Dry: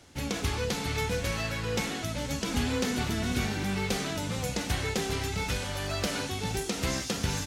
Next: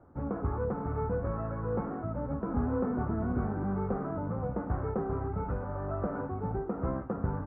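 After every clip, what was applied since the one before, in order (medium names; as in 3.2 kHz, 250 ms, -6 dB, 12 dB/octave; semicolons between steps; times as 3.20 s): elliptic low-pass 1.3 kHz, stop band 70 dB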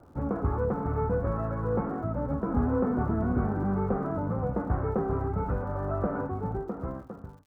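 fade out at the end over 1.28 s; crackle 120 per s -58 dBFS; trim +4 dB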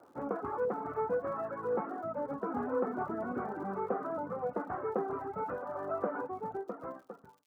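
reverb removal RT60 1 s; high-pass 370 Hz 12 dB/octave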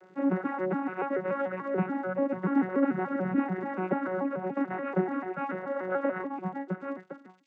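vocoder on a broken chord bare fifth, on F#3, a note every 145 ms; resonant high shelf 1.5 kHz +10.5 dB, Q 1.5; trim +7 dB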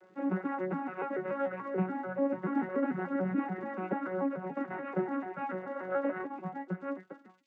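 flange 0.27 Hz, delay 8.7 ms, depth 7.4 ms, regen +42%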